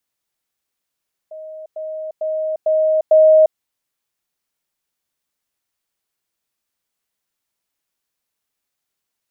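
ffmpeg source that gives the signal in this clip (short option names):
-f lavfi -i "aevalsrc='pow(10,(-30.5+6*floor(t/0.45))/20)*sin(2*PI*627*t)*clip(min(mod(t,0.45),0.35-mod(t,0.45))/0.005,0,1)':d=2.25:s=44100"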